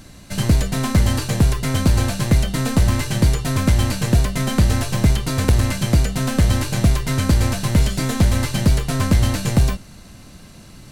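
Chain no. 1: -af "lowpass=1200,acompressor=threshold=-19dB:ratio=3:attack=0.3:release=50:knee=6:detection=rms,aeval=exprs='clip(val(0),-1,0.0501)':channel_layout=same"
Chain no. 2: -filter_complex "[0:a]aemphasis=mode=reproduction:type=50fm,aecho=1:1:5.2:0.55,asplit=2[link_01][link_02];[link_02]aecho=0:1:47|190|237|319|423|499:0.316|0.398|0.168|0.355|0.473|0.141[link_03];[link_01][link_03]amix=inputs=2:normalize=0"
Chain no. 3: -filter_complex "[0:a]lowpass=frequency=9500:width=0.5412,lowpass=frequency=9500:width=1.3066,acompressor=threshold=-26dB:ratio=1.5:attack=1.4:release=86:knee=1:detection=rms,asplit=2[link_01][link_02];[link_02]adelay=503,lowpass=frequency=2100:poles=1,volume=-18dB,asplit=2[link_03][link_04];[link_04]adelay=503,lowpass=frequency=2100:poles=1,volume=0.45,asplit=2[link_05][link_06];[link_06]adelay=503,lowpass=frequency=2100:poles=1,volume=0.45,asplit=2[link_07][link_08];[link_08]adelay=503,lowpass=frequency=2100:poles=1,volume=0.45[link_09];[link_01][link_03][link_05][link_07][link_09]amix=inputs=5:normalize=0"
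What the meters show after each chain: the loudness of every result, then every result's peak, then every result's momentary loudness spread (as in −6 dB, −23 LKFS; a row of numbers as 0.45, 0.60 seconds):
−27.0, −17.0, −24.0 LKFS; −14.5, −2.0, −12.0 dBFS; 5, 2, 5 LU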